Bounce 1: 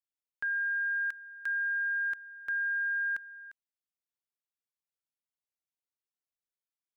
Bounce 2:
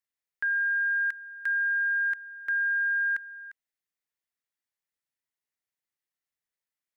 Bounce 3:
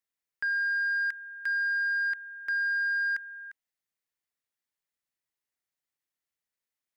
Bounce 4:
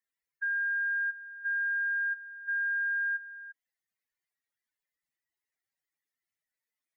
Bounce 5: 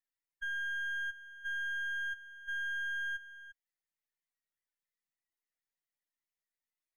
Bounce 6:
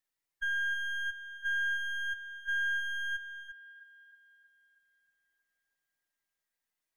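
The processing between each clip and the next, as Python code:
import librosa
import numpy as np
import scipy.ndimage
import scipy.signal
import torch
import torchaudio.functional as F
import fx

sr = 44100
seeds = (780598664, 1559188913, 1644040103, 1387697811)

y1 = fx.peak_eq(x, sr, hz=1900.0, db=8.5, octaves=0.41)
y1 = y1 * librosa.db_to_amplitude(1.0)
y2 = 10.0 ** (-23.0 / 20.0) * np.tanh(y1 / 10.0 ** (-23.0 / 20.0))
y3 = fx.spec_expand(y2, sr, power=3.0)
y3 = y3 * librosa.db_to_amplitude(-1.5)
y4 = np.where(y3 < 0.0, 10.0 ** (-7.0 / 20.0) * y3, y3)
y4 = y4 * librosa.db_to_amplitude(-4.0)
y5 = fx.echo_wet_bandpass(y4, sr, ms=317, feedback_pct=54, hz=1000.0, wet_db=-7)
y5 = y5 * librosa.db_to_amplitude(5.0)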